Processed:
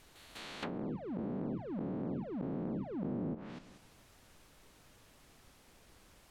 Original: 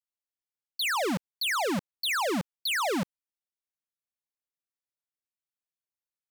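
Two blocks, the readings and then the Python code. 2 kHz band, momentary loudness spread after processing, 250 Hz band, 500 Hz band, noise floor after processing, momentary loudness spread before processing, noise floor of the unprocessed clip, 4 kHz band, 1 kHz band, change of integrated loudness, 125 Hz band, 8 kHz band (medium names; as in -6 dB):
-22.0 dB, 11 LU, -2.5 dB, -8.5 dB, -63 dBFS, 5 LU, under -85 dBFS, under -20 dB, -17.5 dB, -11.5 dB, 0.0 dB, under -20 dB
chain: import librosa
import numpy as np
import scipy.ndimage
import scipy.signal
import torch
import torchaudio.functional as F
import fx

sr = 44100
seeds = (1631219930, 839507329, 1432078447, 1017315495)

y = fx.spec_blur(x, sr, span_ms=711.0)
y = fx.low_shelf(y, sr, hz=260.0, db=10.0)
y = fx.level_steps(y, sr, step_db=12)
y = fx.dmg_noise_colour(y, sr, seeds[0], colour='pink', level_db=-75.0)
y = fx.env_lowpass_down(y, sr, base_hz=460.0, full_db=-45.0)
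y = y * librosa.db_to_amplitude(13.5)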